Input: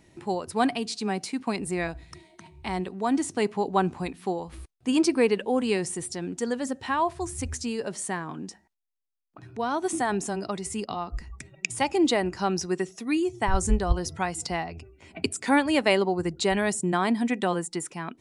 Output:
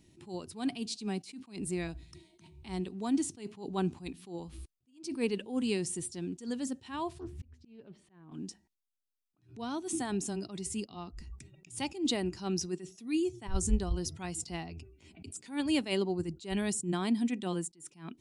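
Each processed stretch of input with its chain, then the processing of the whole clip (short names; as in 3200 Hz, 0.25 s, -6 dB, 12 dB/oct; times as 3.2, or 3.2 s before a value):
7.2–8.32 air absorption 400 m + auto swell 0.602 s + Doppler distortion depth 0.44 ms
whole clip: band shelf 1000 Hz -9.5 dB 2.5 oct; attack slew limiter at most 170 dB/s; gain -3.5 dB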